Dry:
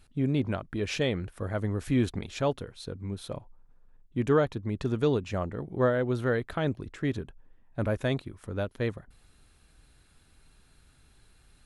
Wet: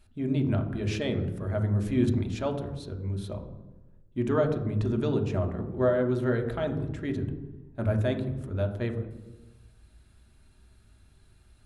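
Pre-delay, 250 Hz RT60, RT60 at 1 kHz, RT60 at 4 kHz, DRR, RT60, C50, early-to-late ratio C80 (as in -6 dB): 3 ms, 1.3 s, 0.95 s, 0.75 s, 3.0 dB, 1.1 s, 9.0 dB, 11.0 dB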